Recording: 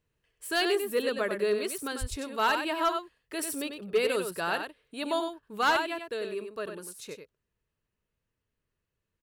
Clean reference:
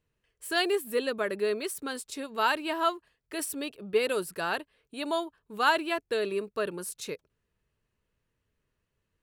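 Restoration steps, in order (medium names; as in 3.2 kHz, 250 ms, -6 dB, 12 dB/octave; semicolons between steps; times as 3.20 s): clip repair -18.5 dBFS; de-plosive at 2.00 s; inverse comb 95 ms -7 dB; trim 0 dB, from 5.77 s +5.5 dB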